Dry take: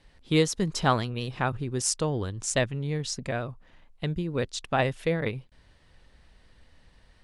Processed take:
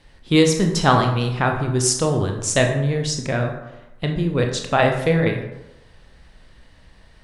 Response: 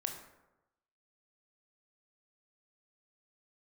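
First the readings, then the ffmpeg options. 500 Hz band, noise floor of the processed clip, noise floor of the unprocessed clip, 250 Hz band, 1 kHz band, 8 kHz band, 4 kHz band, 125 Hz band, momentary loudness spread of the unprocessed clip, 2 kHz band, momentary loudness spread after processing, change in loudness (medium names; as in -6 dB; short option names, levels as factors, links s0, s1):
+9.0 dB, -50 dBFS, -60 dBFS, +9.0 dB, +8.5 dB, +7.5 dB, +8.0 dB, +9.0 dB, 8 LU, +8.5 dB, 9 LU, +8.5 dB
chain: -filter_complex "[1:a]atrim=start_sample=2205[s0];[0:a][s0]afir=irnorm=-1:irlink=0,volume=2.51"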